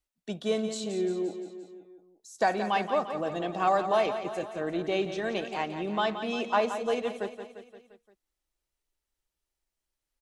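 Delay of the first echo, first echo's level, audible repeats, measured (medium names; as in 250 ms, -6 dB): 174 ms, -10.0 dB, 5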